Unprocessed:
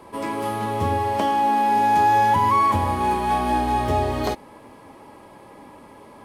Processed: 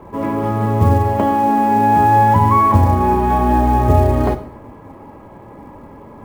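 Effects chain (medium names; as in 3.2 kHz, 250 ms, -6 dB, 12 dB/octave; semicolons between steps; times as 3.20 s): low-pass 1.7 kHz 12 dB/octave; bass shelf 180 Hz +11 dB; short-mantissa float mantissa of 4-bit; reverberation RT60 0.65 s, pre-delay 16 ms, DRR 9 dB; trim +4.5 dB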